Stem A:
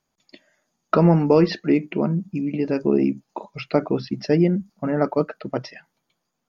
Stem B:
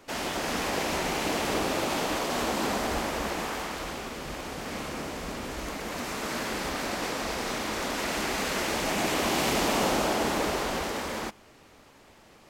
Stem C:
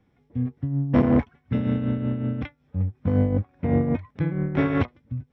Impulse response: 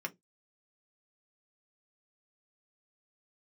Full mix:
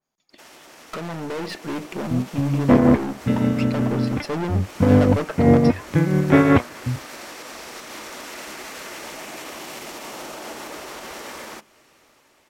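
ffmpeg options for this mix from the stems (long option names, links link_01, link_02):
-filter_complex "[0:a]aeval=exprs='(tanh(25.1*val(0)+0.7)-tanh(0.7))/25.1':channel_layout=same,volume=-1dB[link_01];[1:a]highshelf=frequency=4500:gain=6,alimiter=level_in=1dB:limit=-24dB:level=0:latency=1:release=189,volume=-1dB,adelay=300,volume=-13.5dB,asplit=2[link_02][link_03];[link_03]volume=-8dB[link_04];[2:a]adelay=1750,volume=0.5dB[link_05];[3:a]atrim=start_sample=2205[link_06];[link_04][link_06]afir=irnorm=-1:irlink=0[link_07];[link_01][link_02][link_05][link_07]amix=inputs=4:normalize=0,lowshelf=frequency=130:gain=-9,dynaudnorm=framelen=600:gausssize=5:maxgain=11.5dB,adynamicequalizer=threshold=0.0141:dfrequency=2200:dqfactor=0.7:tfrequency=2200:tqfactor=0.7:attack=5:release=100:ratio=0.375:range=2.5:mode=cutabove:tftype=highshelf"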